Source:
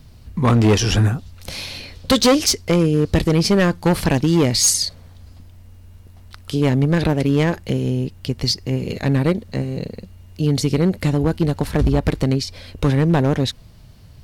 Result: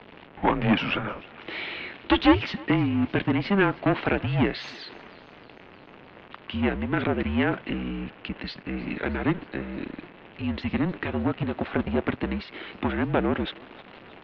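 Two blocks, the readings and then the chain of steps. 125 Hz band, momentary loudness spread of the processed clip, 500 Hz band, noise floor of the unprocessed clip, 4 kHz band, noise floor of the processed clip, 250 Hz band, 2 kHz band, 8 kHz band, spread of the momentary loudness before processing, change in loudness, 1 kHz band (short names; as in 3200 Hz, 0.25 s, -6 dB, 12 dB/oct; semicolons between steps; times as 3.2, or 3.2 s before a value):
-13.0 dB, 16 LU, -8.5 dB, -44 dBFS, -11.5 dB, -49 dBFS, -6.5 dB, -1.0 dB, under -40 dB, 12 LU, -8.0 dB, -2.5 dB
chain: zero-crossing step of -30 dBFS; mistuned SSB -200 Hz 390–3200 Hz; thinning echo 0.311 s, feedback 63%, high-pass 420 Hz, level -21.5 dB; gain -1.5 dB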